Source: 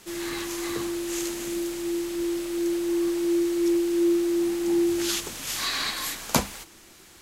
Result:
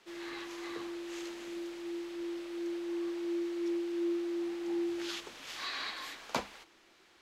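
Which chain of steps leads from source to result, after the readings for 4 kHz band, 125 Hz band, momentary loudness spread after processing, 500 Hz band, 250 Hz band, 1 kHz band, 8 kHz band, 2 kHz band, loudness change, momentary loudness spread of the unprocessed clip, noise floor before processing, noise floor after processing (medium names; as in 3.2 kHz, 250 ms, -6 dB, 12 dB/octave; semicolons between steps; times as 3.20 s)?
-11.5 dB, no reading, 8 LU, -11.0 dB, -11.0 dB, -8.5 dB, -20.0 dB, -8.5 dB, -11.5 dB, 8 LU, -51 dBFS, -64 dBFS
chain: three-band isolator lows -13 dB, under 290 Hz, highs -18 dB, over 4.8 kHz; trim -8.5 dB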